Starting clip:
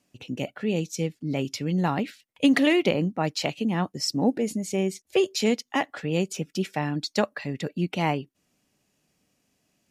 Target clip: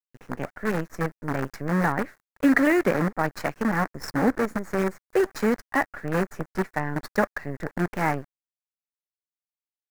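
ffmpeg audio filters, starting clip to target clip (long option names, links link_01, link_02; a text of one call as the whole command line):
ffmpeg -i in.wav -af "acrusher=bits=5:dc=4:mix=0:aa=0.000001,highshelf=frequency=2300:width_type=q:width=3:gain=-9.5" out.wav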